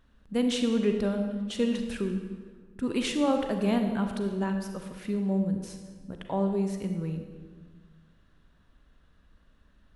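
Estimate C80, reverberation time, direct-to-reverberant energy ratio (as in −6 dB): 7.5 dB, 1.5 s, 5.0 dB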